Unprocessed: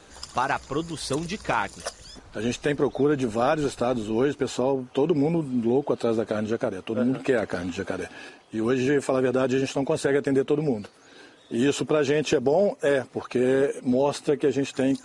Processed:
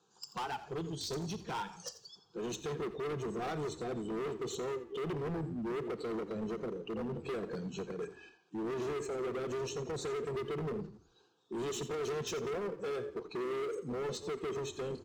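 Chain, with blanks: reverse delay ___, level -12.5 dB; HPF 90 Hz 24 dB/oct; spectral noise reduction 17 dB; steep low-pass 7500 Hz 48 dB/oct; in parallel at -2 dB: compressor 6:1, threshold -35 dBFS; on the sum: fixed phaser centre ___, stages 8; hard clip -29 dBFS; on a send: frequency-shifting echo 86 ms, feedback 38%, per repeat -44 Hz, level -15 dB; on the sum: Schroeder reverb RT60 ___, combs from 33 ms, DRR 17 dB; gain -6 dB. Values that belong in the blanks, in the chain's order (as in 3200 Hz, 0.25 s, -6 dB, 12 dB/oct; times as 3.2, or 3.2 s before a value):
0.118 s, 400 Hz, 0.49 s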